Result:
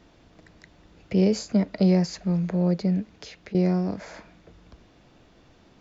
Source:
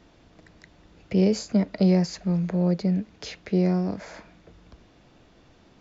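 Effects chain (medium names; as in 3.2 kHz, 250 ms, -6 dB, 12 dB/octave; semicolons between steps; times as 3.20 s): 3.14–3.55 s: compression, threshold -40 dBFS, peak gain reduction 17.5 dB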